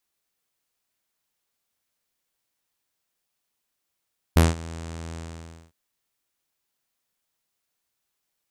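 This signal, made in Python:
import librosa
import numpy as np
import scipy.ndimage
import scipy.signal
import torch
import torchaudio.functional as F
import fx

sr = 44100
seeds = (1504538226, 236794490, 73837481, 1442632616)

y = fx.sub_voice(sr, note=40, wave='saw', cutoff_hz=7900.0, q=2.7, env_oct=1.0, env_s=0.1, attack_ms=6.5, decay_s=0.18, sustain_db=-22.0, release_s=0.57, note_s=0.79, slope=12)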